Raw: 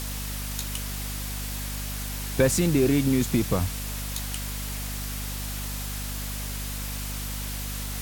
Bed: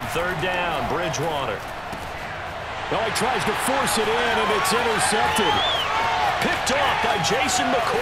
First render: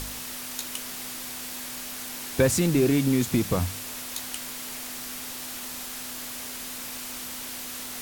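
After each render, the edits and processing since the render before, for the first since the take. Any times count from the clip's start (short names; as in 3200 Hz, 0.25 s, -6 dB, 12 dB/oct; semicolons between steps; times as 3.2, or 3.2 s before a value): de-hum 50 Hz, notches 4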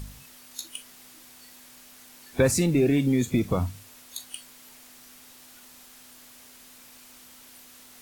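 noise print and reduce 14 dB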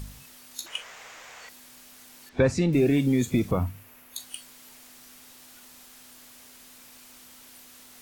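0.66–1.49 EQ curve 160 Hz 0 dB, 290 Hz -10 dB, 460 Hz +11 dB, 2100 Hz +13 dB, 4500 Hz +1 dB, 7000 Hz +5 dB, 10000 Hz -12 dB, 15000 Hz -9 dB; 2.29–2.73 air absorption 140 m; 3.51–4.16 band shelf 5600 Hz -9.5 dB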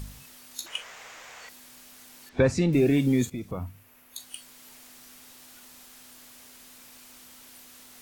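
3.3–4.71 fade in, from -13 dB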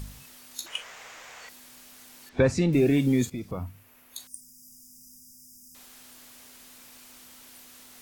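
3.22–3.62 bell 4900 Hz +6 dB 0.24 oct; 4.27–5.75 brick-wall FIR band-stop 270–4800 Hz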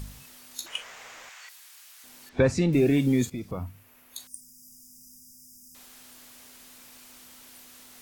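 1.29–2.04 HPF 1200 Hz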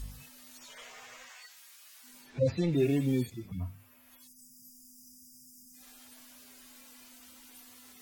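median-filter separation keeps harmonic; dynamic EQ 230 Hz, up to -7 dB, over -36 dBFS, Q 0.73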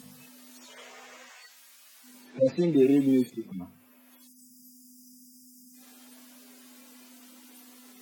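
HPF 220 Hz 24 dB/oct; low shelf 450 Hz +11.5 dB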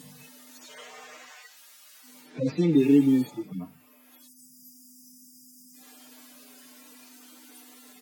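comb 6.6 ms, depth 82%; 2.73–3.4 spectral repair 540–1400 Hz before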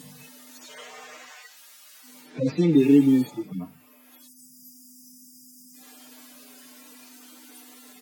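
gain +2.5 dB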